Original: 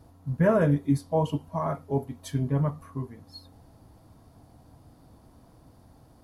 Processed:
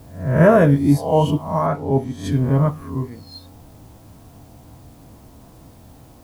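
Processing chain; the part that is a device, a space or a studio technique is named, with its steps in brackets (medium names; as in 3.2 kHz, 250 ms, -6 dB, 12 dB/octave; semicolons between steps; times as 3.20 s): reverse spectral sustain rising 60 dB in 0.54 s; plain cassette with noise reduction switched in (tape noise reduction on one side only decoder only; wow and flutter; white noise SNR 37 dB); 1.66–2.32 s: treble shelf 8.2 kHz -10.5 dB; trim +8 dB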